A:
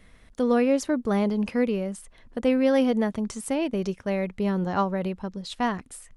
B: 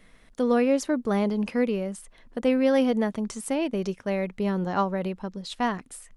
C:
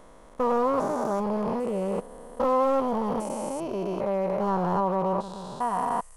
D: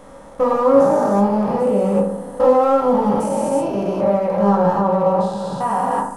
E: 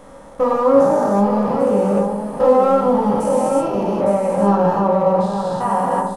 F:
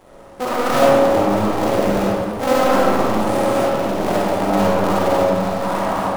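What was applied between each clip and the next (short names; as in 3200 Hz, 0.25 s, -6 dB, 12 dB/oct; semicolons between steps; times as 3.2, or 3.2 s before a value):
bell 68 Hz -14.5 dB 0.92 oct
stepped spectrum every 0.4 s; overloaded stage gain 27 dB; ten-band EQ 250 Hz -6 dB, 500 Hz +3 dB, 1000 Hz +12 dB, 2000 Hz -9 dB, 4000 Hz -5 dB; gain +4 dB
in parallel at -1 dB: limiter -25.5 dBFS, peak gain reduction 10 dB; on the sum: reverb RT60 0.60 s, pre-delay 3 ms, DRR -3.5 dB
echo 0.859 s -8 dB
cycle switcher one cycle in 2, muted; digital reverb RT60 1.5 s, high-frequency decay 0.5×, pre-delay 10 ms, DRR -5.5 dB; gain -5.5 dB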